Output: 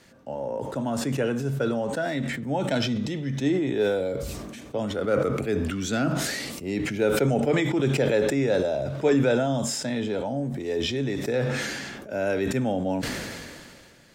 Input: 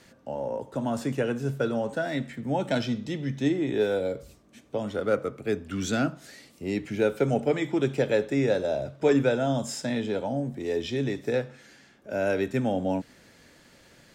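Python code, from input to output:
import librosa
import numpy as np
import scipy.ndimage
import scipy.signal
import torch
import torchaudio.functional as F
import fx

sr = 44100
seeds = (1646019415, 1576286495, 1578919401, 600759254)

y = fx.sustainer(x, sr, db_per_s=28.0)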